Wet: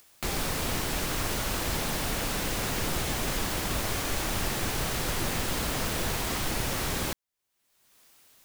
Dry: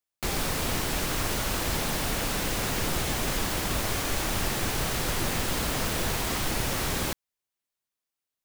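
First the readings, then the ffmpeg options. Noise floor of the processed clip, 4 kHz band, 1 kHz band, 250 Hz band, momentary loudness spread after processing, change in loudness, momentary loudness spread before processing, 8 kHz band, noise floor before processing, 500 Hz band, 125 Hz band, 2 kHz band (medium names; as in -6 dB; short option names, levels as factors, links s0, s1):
-76 dBFS, -1.5 dB, -1.5 dB, -1.5 dB, 0 LU, -1.5 dB, 0 LU, -1.5 dB, under -85 dBFS, -1.5 dB, -1.5 dB, -1.5 dB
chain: -af "acompressor=mode=upward:threshold=0.0224:ratio=2.5,volume=0.841"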